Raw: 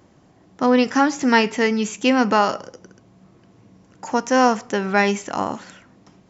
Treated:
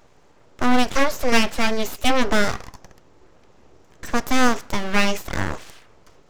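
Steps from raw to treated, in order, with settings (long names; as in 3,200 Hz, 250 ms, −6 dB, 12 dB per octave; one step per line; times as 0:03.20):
dynamic equaliser 1,300 Hz, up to −4 dB, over −31 dBFS, Q 2.4
high-pass filter 81 Hz 6 dB per octave
full-wave rectification
level +2 dB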